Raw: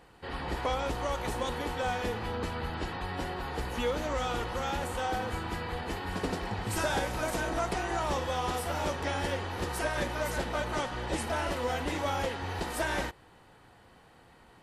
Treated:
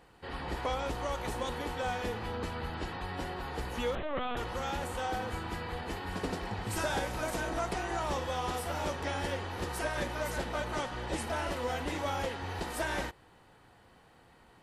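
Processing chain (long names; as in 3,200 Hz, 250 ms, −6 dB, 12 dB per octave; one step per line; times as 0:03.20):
0:03.95–0:04.37: linear-prediction vocoder at 8 kHz pitch kept
level −2.5 dB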